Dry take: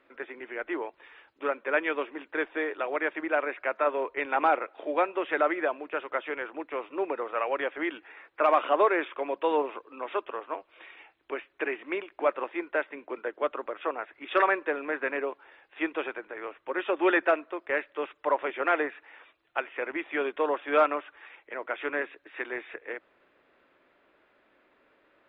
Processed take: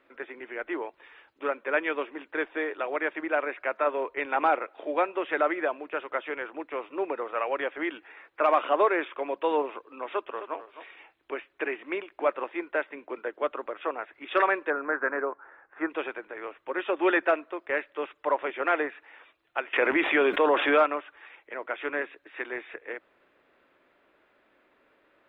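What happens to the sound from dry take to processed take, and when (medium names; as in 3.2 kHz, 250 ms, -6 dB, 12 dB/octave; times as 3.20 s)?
10.10–10.57 s: echo throw 260 ms, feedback 10%, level -12.5 dB
14.70–15.90 s: resonant high shelf 2.1 kHz -13 dB, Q 3
19.73–20.82 s: level flattener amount 70%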